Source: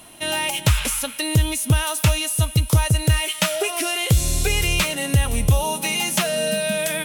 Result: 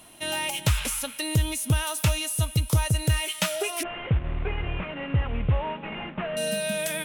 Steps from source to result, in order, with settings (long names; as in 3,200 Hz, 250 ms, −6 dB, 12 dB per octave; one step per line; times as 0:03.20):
0:03.83–0:06.37: variable-slope delta modulation 16 kbit/s
level −5.5 dB